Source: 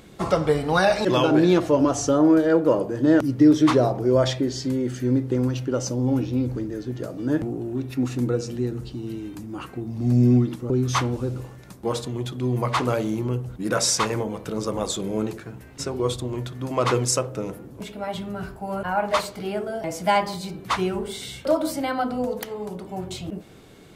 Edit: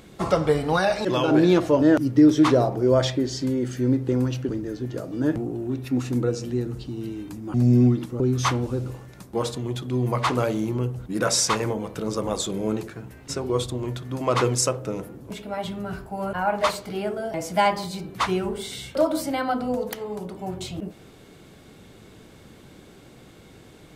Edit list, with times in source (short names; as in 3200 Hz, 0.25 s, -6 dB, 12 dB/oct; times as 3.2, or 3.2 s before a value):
0.76–1.28 gain -3 dB
1.82–3.05 cut
5.72–6.55 cut
9.6–10.04 cut